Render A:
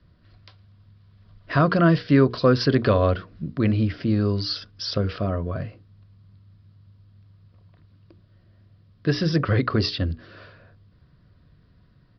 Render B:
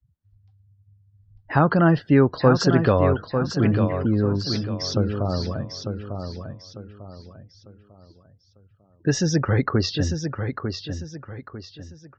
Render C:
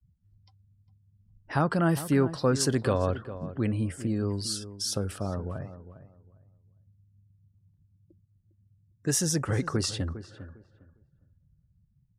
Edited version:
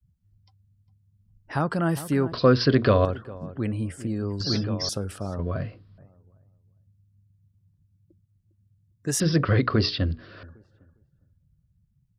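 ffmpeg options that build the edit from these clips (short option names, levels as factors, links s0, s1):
-filter_complex "[0:a]asplit=3[s0][s1][s2];[2:a]asplit=5[s3][s4][s5][s6][s7];[s3]atrim=end=2.322[s8];[s0]atrim=start=2.318:end=3.052[s9];[s4]atrim=start=3.048:end=4.402[s10];[1:a]atrim=start=4.398:end=4.892[s11];[s5]atrim=start=4.888:end=5.392[s12];[s1]atrim=start=5.388:end=5.982[s13];[s6]atrim=start=5.978:end=9.202[s14];[s2]atrim=start=9.198:end=10.432[s15];[s7]atrim=start=10.428[s16];[s8][s9]acrossfade=d=0.004:c1=hsin:c2=hsin[s17];[s17][s10]acrossfade=d=0.004:c1=hsin:c2=hsin[s18];[s18][s11]acrossfade=d=0.004:c1=hsin:c2=hsin[s19];[s19][s12]acrossfade=d=0.004:c1=hsin:c2=hsin[s20];[s20][s13]acrossfade=d=0.004:c1=hsin:c2=hsin[s21];[s21][s14]acrossfade=d=0.004:c1=hsin:c2=hsin[s22];[s22][s15]acrossfade=d=0.004:c1=hsin:c2=hsin[s23];[s23][s16]acrossfade=d=0.004:c1=hsin:c2=hsin"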